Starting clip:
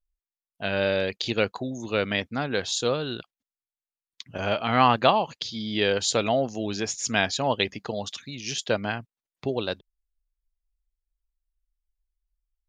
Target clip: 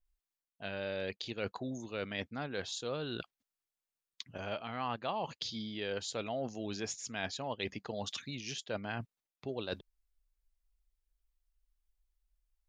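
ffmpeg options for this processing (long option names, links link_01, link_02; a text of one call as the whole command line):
ffmpeg -i in.wav -af "areverse,acompressor=threshold=-39dB:ratio=4,areverse,adynamicequalizer=threshold=0.00224:dfrequency=4400:dqfactor=0.7:tfrequency=4400:tqfactor=0.7:attack=5:release=100:ratio=0.375:range=2:mode=cutabove:tftype=highshelf,volume=1.5dB" out.wav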